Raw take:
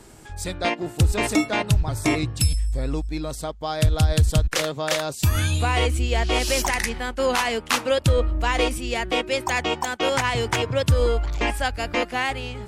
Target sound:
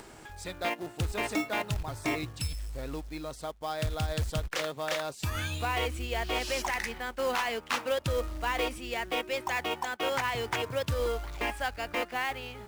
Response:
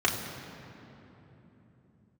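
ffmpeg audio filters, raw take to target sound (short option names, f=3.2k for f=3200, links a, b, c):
-filter_complex "[0:a]asplit=2[a][b];[b]highpass=f=720:p=1,volume=8dB,asoftclip=type=tanh:threshold=-9dB[c];[a][c]amix=inputs=2:normalize=0,lowpass=f=2.7k:p=1,volume=-6dB,acompressor=mode=upward:threshold=-33dB:ratio=2.5,acrusher=bits=4:mode=log:mix=0:aa=0.000001,volume=-8.5dB"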